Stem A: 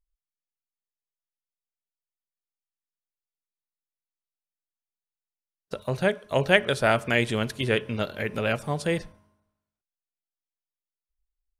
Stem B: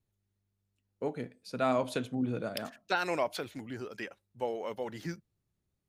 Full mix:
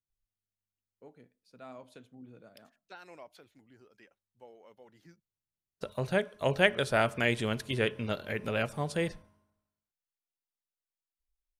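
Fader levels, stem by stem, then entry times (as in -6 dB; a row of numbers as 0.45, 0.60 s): -5.0, -19.0 dB; 0.10, 0.00 s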